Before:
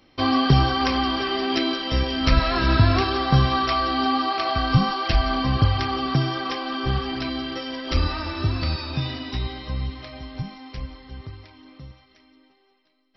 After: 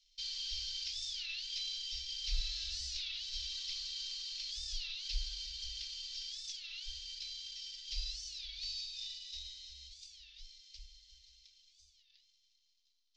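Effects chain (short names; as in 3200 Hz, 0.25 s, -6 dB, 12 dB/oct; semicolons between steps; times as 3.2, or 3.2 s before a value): CVSD 32 kbps; inverse Chebyshev band-stop 120–950 Hz, stop band 70 dB; record warp 33 1/3 rpm, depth 250 cents; gain -5 dB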